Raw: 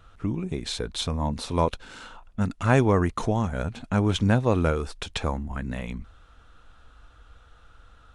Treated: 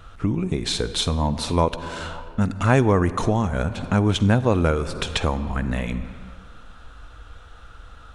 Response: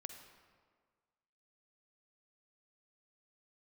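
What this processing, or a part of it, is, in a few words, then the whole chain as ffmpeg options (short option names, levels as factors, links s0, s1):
ducked reverb: -filter_complex "[0:a]asplit=3[s0][s1][s2];[1:a]atrim=start_sample=2205[s3];[s1][s3]afir=irnorm=-1:irlink=0[s4];[s2]apad=whole_len=359411[s5];[s4][s5]sidechaincompress=threshold=0.0251:ratio=5:attack=36:release=316,volume=2.99[s6];[s0][s6]amix=inputs=2:normalize=0"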